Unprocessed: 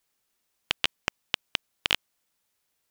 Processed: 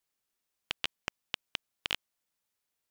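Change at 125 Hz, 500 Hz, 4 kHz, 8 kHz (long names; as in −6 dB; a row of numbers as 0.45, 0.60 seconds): −8.0, −8.0, −8.0, −8.0 decibels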